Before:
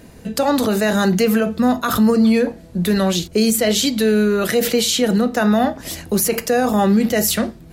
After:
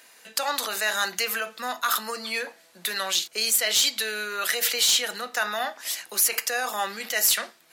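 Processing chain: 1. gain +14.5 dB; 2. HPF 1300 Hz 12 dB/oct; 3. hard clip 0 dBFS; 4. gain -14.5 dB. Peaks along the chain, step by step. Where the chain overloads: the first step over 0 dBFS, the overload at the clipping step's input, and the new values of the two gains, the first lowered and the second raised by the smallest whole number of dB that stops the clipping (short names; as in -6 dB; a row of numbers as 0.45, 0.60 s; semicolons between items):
+7.0, +8.0, 0.0, -14.5 dBFS; step 1, 8.0 dB; step 1 +6.5 dB, step 4 -6.5 dB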